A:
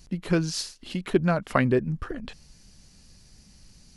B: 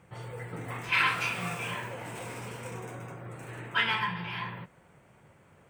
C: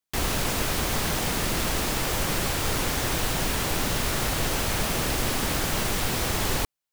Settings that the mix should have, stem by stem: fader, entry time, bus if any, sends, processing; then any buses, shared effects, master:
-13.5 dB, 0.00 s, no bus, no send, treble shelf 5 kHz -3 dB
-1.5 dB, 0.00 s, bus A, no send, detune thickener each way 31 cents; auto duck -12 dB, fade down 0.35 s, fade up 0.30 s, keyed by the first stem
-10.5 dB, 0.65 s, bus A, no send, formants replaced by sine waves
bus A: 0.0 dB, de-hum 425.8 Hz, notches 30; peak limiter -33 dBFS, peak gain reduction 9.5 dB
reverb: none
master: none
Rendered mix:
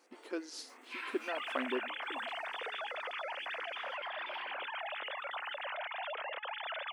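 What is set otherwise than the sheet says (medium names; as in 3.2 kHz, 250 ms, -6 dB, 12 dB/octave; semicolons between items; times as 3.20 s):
stem C: entry 0.65 s -> 1.15 s; master: extra brick-wall FIR high-pass 230 Hz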